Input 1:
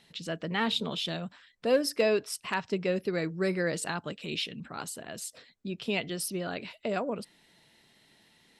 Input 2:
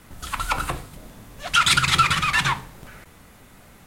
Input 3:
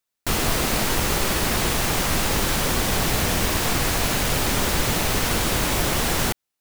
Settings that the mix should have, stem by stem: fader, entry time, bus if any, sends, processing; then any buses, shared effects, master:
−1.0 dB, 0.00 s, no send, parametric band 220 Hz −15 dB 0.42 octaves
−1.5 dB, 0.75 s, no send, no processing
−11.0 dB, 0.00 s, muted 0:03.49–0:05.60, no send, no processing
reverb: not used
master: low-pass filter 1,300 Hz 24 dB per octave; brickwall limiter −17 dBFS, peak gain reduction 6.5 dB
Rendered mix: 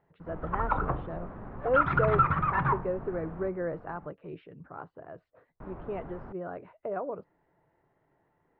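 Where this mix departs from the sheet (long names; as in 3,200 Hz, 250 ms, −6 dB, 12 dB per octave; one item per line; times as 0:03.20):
stem 2: entry 0.75 s → 0.20 s
stem 3 −11.0 dB → −20.0 dB
master: missing brickwall limiter −17 dBFS, peak gain reduction 6.5 dB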